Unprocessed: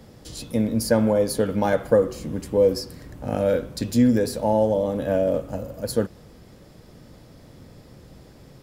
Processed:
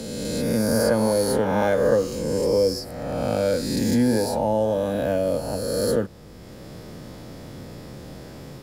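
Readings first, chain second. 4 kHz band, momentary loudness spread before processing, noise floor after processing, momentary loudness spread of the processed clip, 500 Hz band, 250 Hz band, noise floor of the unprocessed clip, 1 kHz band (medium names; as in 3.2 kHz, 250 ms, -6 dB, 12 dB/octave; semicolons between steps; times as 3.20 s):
+4.0 dB, 13 LU, -42 dBFS, 20 LU, +0.5 dB, -0.5 dB, -49 dBFS, +1.5 dB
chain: reverse spectral sustain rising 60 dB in 1.63 s; three bands compressed up and down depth 40%; trim -3 dB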